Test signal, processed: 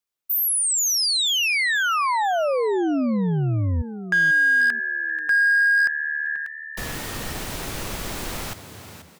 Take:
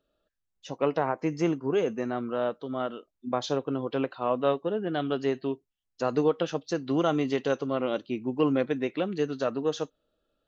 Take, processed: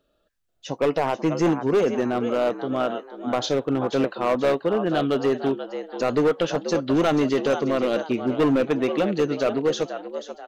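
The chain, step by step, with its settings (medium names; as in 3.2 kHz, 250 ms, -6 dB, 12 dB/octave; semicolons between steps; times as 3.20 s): frequency-shifting echo 485 ms, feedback 36%, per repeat +75 Hz, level -11.5 dB; hard clipper -22 dBFS; trim +7 dB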